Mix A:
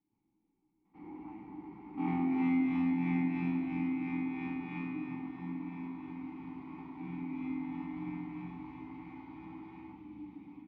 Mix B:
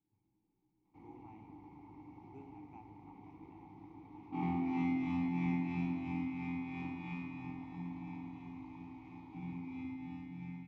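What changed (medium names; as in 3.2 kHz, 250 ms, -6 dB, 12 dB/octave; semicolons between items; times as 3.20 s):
first sound: send off; second sound: entry +2.35 s; master: add fifteen-band graphic EQ 100 Hz +10 dB, 250 Hz -6 dB, 1.6 kHz -11 dB, 6.3 kHz +9 dB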